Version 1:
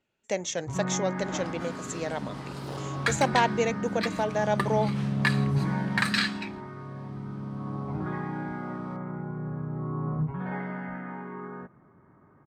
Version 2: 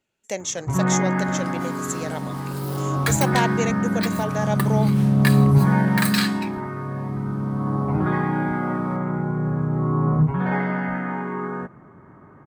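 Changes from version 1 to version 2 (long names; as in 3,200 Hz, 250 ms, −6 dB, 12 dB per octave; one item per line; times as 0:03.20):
first sound +10.5 dB
master: remove high-frequency loss of the air 92 metres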